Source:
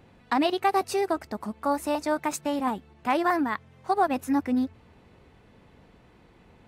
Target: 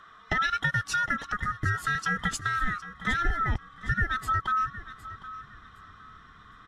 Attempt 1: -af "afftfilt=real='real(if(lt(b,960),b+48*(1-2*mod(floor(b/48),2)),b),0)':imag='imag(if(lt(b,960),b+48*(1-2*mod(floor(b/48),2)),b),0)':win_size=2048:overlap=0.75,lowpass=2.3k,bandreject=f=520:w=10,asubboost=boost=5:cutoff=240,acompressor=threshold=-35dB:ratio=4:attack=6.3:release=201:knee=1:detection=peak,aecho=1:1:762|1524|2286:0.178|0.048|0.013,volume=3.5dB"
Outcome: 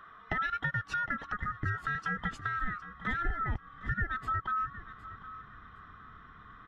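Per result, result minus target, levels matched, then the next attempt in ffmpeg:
8000 Hz band -14.5 dB; compressor: peak gain reduction +5.5 dB
-af "afftfilt=real='real(if(lt(b,960),b+48*(1-2*mod(floor(b/48),2)),b),0)':imag='imag(if(lt(b,960),b+48*(1-2*mod(floor(b/48),2)),b),0)':win_size=2048:overlap=0.75,lowpass=7.2k,bandreject=f=520:w=10,asubboost=boost=5:cutoff=240,acompressor=threshold=-35dB:ratio=4:attack=6.3:release=201:knee=1:detection=peak,aecho=1:1:762|1524|2286:0.178|0.048|0.013,volume=3.5dB"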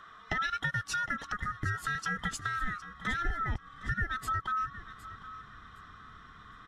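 compressor: peak gain reduction +5.5 dB
-af "afftfilt=real='real(if(lt(b,960),b+48*(1-2*mod(floor(b/48),2)),b),0)':imag='imag(if(lt(b,960),b+48*(1-2*mod(floor(b/48),2)),b),0)':win_size=2048:overlap=0.75,lowpass=7.2k,bandreject=f=520:w=10,asubboost=boost=5:cutoff=240,acompressor=threshold=-27.5dB:ratio=4:attack=6.3:release=201:knee=1:detection=peak,aecho=1:1:762|1524|2286:0.178|0.048|0.013,volume=3.5dB"

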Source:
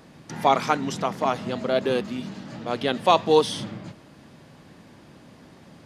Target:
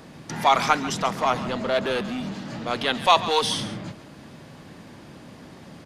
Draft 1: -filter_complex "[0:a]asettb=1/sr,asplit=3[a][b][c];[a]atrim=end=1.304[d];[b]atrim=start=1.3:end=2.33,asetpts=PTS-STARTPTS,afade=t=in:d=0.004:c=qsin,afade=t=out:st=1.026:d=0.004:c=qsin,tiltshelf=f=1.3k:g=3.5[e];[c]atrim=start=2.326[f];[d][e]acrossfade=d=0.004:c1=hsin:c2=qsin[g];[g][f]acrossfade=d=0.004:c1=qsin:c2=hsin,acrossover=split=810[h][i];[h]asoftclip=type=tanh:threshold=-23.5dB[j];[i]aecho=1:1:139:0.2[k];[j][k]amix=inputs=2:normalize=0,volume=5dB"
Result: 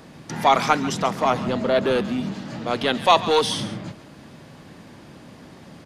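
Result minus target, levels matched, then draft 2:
soft clip: distortion -5 dB
-filter_complex "[0:a]asettb=1/sr,asplit=3[a][b][c];[a]atrim=end=1.304[d];[b]atrim=start=1.3:end=2.33,asetpts=PTS-STARTPTS,afade=t=in:d=0.004:c=qsin,afade=t=out:st=1.026:d=0.004:c=qsin,tiltshelf=f=1.3k:g=3.5[e];[c]atrim=start=2.326[f];[d][e]acrossfade=d=0.004:c1=hsin:c2=qsin[g];[g][f]acrossfade=d=0.004:c1=qsin:c2=hsin,acrossover=split=810[h][i];[h]asoftclip=type=tanh:threshold=-32.5dB[j];[i]aecho=1:1:139:0.2[k];[j][k]amix=inputs=2:normalize=0,volume=5dB"

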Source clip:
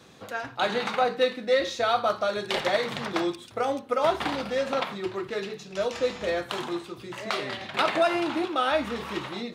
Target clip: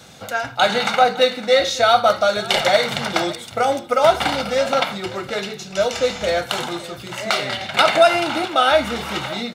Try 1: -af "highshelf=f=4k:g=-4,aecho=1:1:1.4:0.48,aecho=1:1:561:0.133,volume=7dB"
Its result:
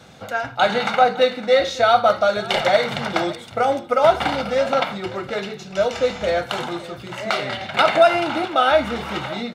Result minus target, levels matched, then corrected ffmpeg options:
8000 Hz band -7.0 dB
-af "highshelf=f=4k:g=7,aecho=1:1:1.4:0.48,aecho=1:1:561:0.133,volume=7dB"

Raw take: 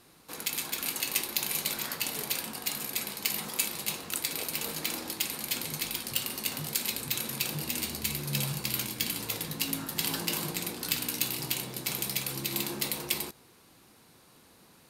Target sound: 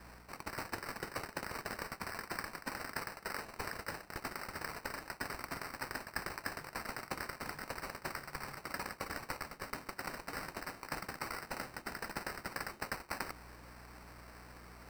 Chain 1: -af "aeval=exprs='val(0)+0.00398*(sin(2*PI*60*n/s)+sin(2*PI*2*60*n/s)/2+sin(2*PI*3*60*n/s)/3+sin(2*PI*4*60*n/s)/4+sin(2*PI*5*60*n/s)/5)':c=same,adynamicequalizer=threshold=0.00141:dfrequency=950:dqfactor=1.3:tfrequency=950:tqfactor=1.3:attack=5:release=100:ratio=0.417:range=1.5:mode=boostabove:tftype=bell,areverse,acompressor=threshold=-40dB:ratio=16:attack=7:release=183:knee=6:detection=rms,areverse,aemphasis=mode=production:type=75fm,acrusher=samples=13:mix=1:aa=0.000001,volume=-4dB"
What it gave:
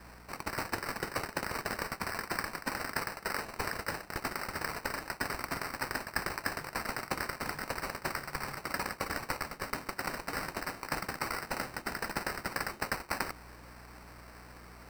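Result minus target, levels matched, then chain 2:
compressor: peak gain reduction -6 dB
-af "aeval=exprs='val(0)+0.00398*(sin(2*PI*60*n/s)+sin(2*PI*2*60*n/s)/2+sin(2*PI*3*60*n/s)/3+sin(2*PI*4*60*n/s)/4+sin(2*PI*5*60*n/s)/5)':c=same,adynamicequalizer=threshold=0.00141:dfrequency=950:dqfactor=1.3:tfrequency=950:tqfactor=1.3:attack=5:release=100:ratio=0.417:range=1.5:mode=boostabove:tftype=bell,areverse,acompressor=threshold=-46.5dB:ratio=16:attack=7:release=183:knee=6:detection=rms,areverse,aemphasis=mode=production:type=75fm,acrusher=samples=13:mix=1:aa=0.000001,volume=-4dB"

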